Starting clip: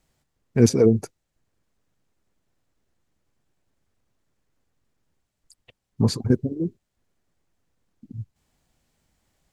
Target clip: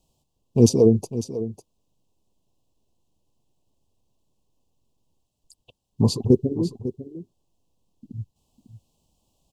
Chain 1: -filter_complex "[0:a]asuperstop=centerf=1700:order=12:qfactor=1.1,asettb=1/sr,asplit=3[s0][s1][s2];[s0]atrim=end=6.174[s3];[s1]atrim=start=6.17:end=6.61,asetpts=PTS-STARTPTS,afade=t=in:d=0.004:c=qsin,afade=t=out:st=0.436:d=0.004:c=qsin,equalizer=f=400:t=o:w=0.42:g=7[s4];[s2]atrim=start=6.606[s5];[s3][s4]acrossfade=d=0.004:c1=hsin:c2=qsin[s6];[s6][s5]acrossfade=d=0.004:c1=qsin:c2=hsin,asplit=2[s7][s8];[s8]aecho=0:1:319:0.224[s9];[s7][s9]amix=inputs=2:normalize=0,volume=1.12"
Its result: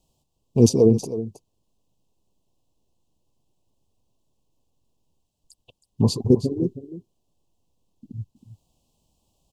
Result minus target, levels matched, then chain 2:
echo 231 ms early
-filter_complex "[0:a]asuperstop=centerf=1700:order=12:qfactor=1.1,asettb=1/sr,asplit=3[s0][s1][s2];[s0]atrim=end=6.174[s3];[s1]atrim=start=6.17:end=6.61,asetpts=PTS-STARTPTS,afade=t=in:d=0.004:c=qsin,afade=t=out:st=0.436:d=0.004:c=qsin,equalizer=f=400:t=o:w=0.42:g=7[s4];[s2]atrim=start=6.606[s5];[s3][s4]acrossfade=d=0.004:c1=hsin:c2=qsin[s6];[s6][s5]acrossfade=d=0.004:c1=qsin:c2=hsin,asplit=2[s7][s8];[s8]aecho=0:1:550:0.224[s9];[s7][s9]amix=inputs=2:normalize=0,volume=1.12"

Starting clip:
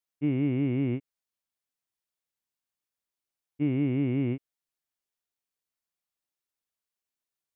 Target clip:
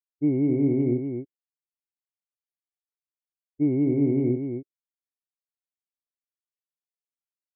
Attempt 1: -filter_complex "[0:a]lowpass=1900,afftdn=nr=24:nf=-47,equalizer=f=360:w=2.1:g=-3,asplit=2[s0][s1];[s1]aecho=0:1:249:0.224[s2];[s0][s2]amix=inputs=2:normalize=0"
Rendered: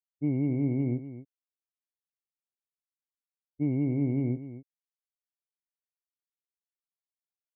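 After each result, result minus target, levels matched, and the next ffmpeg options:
500 Hz band -5.5 dB; echo-to-direct -6.5 dB
-filter_complex "[0:a]lowpass=1900,afftdn=nr=24:nf=-47,equalizer=f=360:w=2.1:g=9,asplit=2[s0][s1];[s1]aecho=0:1:249:0.224[s2];[s0][s2]amix=inputs=2:normalize=0"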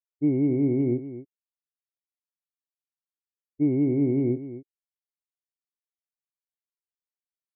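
echo-to-direct -6.5 dB
-filter_complex "[0:a]lowpass=1900,afftdn=nr=24:nf=-47,equalizer=f=360:w=2.1:g=9,asplit=2[s0][s1];[s1]aecho=0:1:249:0.473[s2];[s0][s2]amix=inputs=2:normalize=0"

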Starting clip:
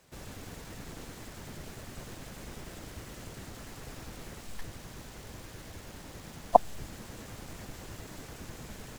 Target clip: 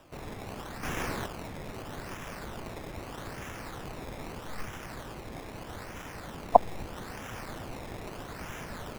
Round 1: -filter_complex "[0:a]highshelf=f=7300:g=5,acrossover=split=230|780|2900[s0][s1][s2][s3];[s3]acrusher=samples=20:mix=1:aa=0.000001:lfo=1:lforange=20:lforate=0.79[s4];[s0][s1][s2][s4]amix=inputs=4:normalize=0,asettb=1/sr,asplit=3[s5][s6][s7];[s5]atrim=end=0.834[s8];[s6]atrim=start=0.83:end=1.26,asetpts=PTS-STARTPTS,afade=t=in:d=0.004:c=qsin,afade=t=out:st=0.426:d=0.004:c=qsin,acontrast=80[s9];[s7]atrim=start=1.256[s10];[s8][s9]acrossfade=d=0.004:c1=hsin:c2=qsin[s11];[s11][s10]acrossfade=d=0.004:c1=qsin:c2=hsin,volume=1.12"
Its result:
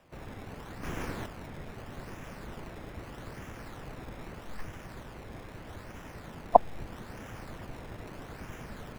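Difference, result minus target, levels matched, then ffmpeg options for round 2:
8 kHz band -6.5 dB
-filter_complex "[0:a]highshelf=f=7300:g=16.5,acrossover=split=230|780|2900[s0][s1][s2][s3];[s3]acrusher=samples=20:mix=1:aa=0.000001:lfo=1:lforange=20:lforate=0.79[s4];[s0][s1][s2][s4]amix=inputs=4:normalize=0,asettb=1/sr,asplit=3[s5][s6][s7];[s5]atrim=end=0.834[s8];[s6]atrim=start=0.83:end=1.26,asetpts=PTS-STARTPTS,afade=t=in:d=0.004:c=qsin,afade=t=out:st=0.426:d=0.004:c=qsin,acontrast=80[s9];[s7]atrim=start=1.256[s10];[s8][s9]acrossfade=d=0.004:c1=hsin:c2=qsin[s11];[s11][s10]acrossfade=d=0.004:c1=qsin:c2=hsin,volume=1.12"

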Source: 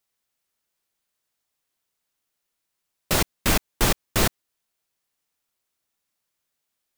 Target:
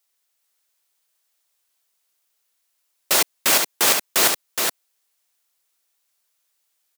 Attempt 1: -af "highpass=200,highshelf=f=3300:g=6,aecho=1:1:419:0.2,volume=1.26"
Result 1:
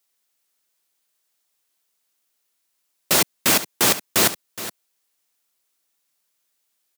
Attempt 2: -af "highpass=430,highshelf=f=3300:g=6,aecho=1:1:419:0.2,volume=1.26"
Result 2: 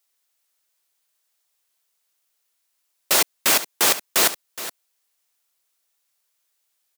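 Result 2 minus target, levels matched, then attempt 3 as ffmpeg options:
echo-to-direct -9.5 dB
-af "highpass=430,highshelf=f=3300:g=6,aecho=1:1:419:0.596,volume=1.26"

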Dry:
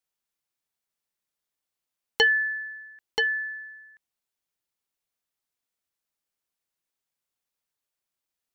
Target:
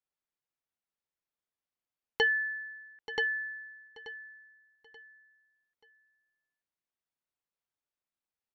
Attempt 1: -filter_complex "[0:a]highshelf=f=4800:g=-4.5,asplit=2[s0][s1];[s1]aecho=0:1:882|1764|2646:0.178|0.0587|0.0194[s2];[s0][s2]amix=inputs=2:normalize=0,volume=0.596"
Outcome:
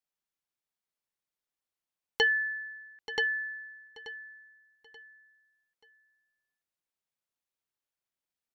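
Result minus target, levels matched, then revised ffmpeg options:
8 kHz band +5.5 dB
-filter_complex "[0:a]highshelf=f=4800:g=-15.5,asplit=2[s0][s1];[s1]aecho=0:1:882|1764|2646:0.178|0.0587|0.0194[s2];[s0][s2]amix=inputs=2:normalize=0,volume=0.596"

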